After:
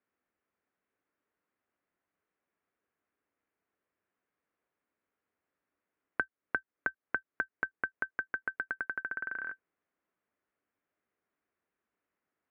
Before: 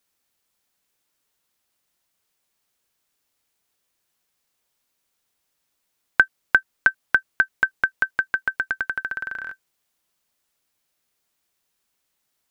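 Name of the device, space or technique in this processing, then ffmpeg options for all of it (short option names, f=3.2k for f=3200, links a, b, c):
bass amplifier: -af "acompressor=threshold=-29dB:ratio=3,highpass=61,equalizer=f=66:t=q:w=4:g=-6,equalizer=f=130:t=q:w=4:g=-9,equalizer=f=290:t=q:w=4:g=4,equalizer=f=420:t=q:w=4:g=3,equalizer=f=870:t=q:w=4:g=-4,lowpass=f=2k:w=0.5412,lowpass=f=2k:w=1.3066,volume=-3.5dB"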